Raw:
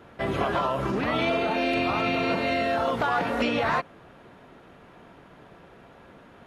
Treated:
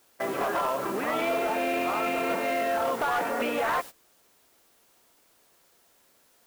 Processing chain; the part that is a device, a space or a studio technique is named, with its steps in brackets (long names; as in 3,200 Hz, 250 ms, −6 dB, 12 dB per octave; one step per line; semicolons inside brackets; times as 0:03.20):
aircraft radio (band-pass filter 330–2,300 Hz; hard clipping −22 dBFS, distortion −17 dB; white noise bed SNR 16 dB; noise gate −37 dBFS, range −18 dB)